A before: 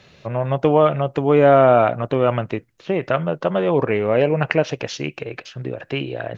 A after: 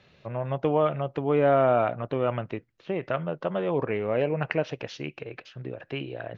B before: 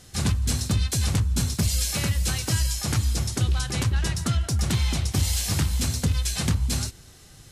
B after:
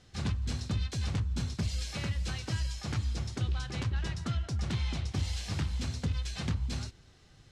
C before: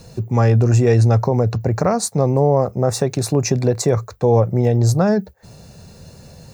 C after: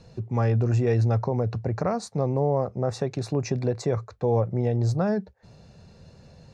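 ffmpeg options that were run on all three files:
-af "lowpass=4500,volume=-8.5dB"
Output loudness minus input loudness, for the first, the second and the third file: −8.5, −9.5, −8.5 LU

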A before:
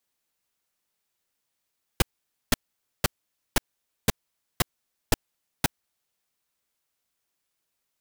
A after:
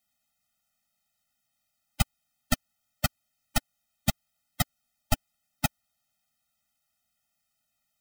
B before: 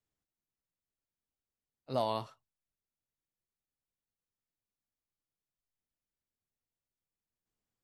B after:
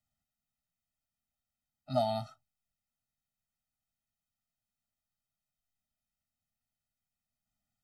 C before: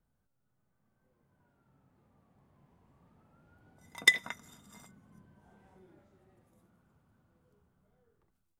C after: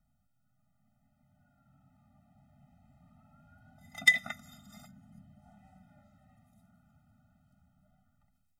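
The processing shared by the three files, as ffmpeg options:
-filter_complex "[0:a]asplit=2[link_01][link_02];[link_02]alimiter=limit=-16.5dB:level=0:latency=1:release=25,volume=0.5dB[link_03];[link_01][link_03]amix=inputs=2:normalize=0,afftfilt=real='re*eq(mod(floor(b*sr/1024/300),2),0)':imag='im*eq(mod(floor(b*sr/1024/300),2),0)':win_size=1024:overlap=0.75,volume=-2dB"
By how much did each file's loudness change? −1.0, +2.0, +1.0 LU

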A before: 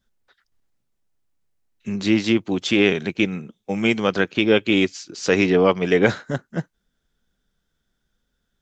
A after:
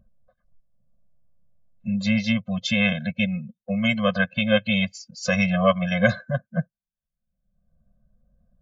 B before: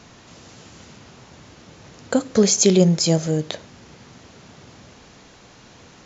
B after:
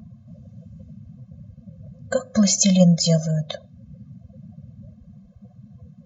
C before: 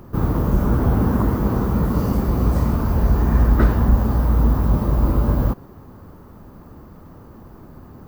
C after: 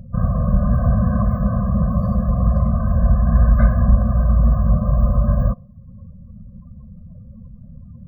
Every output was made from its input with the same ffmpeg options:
-filter_complex "[0:a]afftdn=noise_reduction=28:noise_floor=-37,acrossover=split=820|2000[link_01][link_02][link_03];[link_01]acompressor=mode=upward:threshold=-33dB:ratio=2.5[link_04];[link_04][link_02][link_03]amix=inputs=3:normalize=0,afftfilt=real='re*eq(mod(floor(b*sr/1024/250),2),0)':imag='im*eq(mod(floor(b*sr/1024/250),2),0)':win_size=1024:overlap=0.75,volume=2dB"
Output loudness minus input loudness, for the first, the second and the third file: −3.0, −0.5, +1.0 LU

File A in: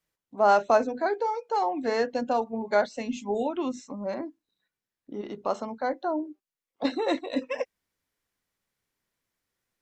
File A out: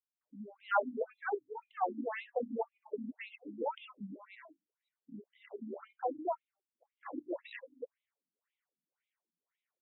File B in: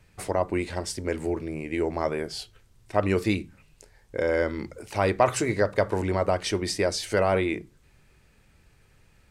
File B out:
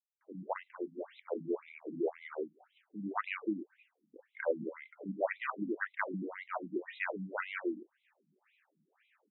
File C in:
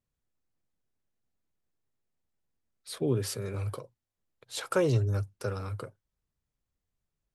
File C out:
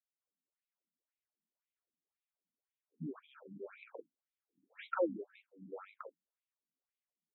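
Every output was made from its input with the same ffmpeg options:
-filter_complex "[0:a]acrossover=split=270|5600[link_01][link_02][link_03];[link_02]adelay=210[link_04];[link_03]adelay=270[link_05];[link_01][link_04][link_05]amix=inputs=3:normalize=0,acontrast=26,afftfilt=real='re*between(b*sr/1024,210*pow(2900/210,0.5+0.5*sin(2*PI*1.9*pts/sr))/1.41,210*pow(2900/210,0.5+0.5*sin(2*PI*1.9*pts/sr))*1.41)':imag='im*between(b*sr/1024,210*pow(2900/210,0.5+0.5*sin(2*PI*1.9*pts/sr))/1.41,210*pow(2900/210,0.5+0.5*sin(2*PI*1.9*pts/sr))*1.41)':win_size=1024:overlap=0.75,volume=-7dB"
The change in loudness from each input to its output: −11.5, −12.0, −11.5 LU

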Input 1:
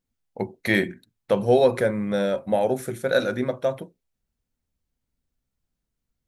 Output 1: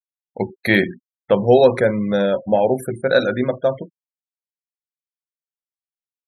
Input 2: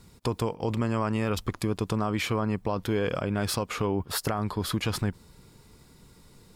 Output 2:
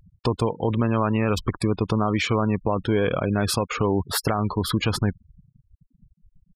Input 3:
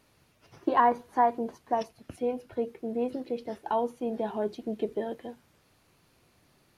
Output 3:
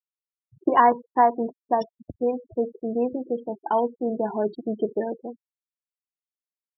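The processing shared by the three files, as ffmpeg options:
-af "afftfilt=real='re*gte(hypot(re,im),0.0178)':imag='im*gte(hypot(re,im),0.0178)':win_size=1024:overlap=0.75,volume=5.5dB"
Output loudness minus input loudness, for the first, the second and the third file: +5.5, +5.5, +5.5 LU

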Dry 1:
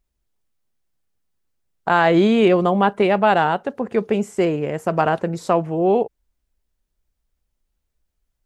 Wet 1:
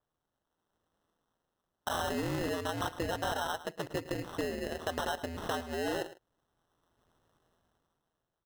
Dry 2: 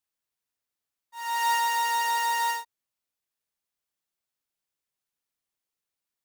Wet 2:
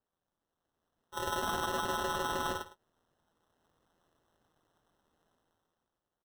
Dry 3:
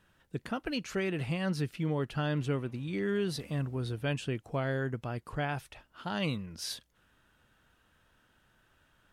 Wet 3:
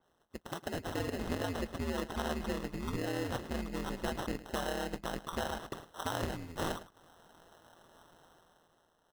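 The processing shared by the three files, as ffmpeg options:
-af "highpass=frequency=100:poles=1,tiltshelf=frequency=830:gain=-5.5,bandreject=frequency=1400:width=12,dynaudnorm=framelen=100:gausssize=17:maxgain=14dB,aeval=exprs='val(0)*sin(2*PI*84*n/s)':channel_layout=same,acrusher=samples=19:mix=1:aa=0.000001,aeval=exprs='0.299*(abs(mod(val(0)/0.299+3,4)-2)-1)':channel_layout=same,acompressor=threshold=-30dB:ratio=3,aecho=1:1:108:0.168,adynamicequalizer=threshold=0.00355:dfrequency=5200:dqfactor=0.7:tfrequency=5200:tqfactor=0.7:attack=5:release=100:ratio=0.375:range=2:mode=cutabove:tftype=highshelf,volume=-4dB"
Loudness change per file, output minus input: −17.0, −8.5, −3.5 LU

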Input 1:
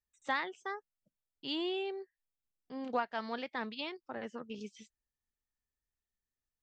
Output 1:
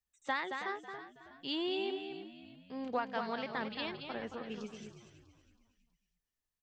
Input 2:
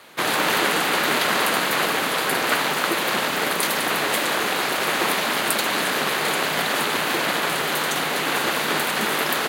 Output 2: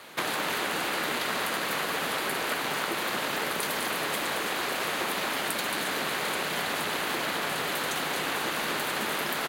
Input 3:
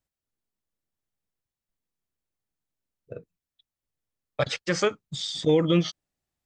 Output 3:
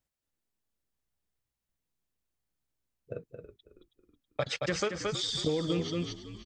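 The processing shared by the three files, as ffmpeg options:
-filter_complex "[0:a]asplit=2[link_01][link_02];[link_02]aecho=0:1:223:0.422[link_03];[link_01][link_03]amix=inputs=2:normalize=0,acompressor=threshold=-28dB:ratio=5,asplit=2[link_04][link_05];[link_05]asplit=4[link_06][link_07][link_08][link_09];[link_06]adelay=323,afreqshift=-62,volume=-13dB[link_10];[link_07]adelay=646,afreqshift=-124,volume=-20.3dB[link_11];[link_08]adelay=969,afreqshift=-186,volume=-27.7dB[link_12];[link_09]adelay=1292,afreqshift=-248,volume=-35dB[link_13];[link_10][link_11][link_12][link_13]amix=inputs=4:normalize=0[link_14];[link_04][link_14]amix=inputs=2:normalize=0"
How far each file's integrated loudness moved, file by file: 0.0, −8.0, −7.0 LU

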